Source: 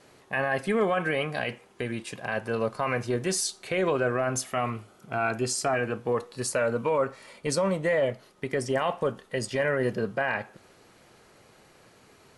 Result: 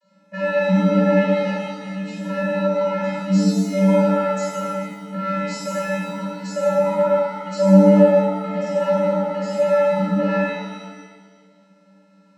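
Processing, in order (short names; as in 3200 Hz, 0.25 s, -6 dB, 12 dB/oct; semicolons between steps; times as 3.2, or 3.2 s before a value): sample leveller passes 2; vocoder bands 32, square 193 Hz; shimmer reverb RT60 1.4 s, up +7 st, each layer -8 dB, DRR -9 dB; gain -3.5 dB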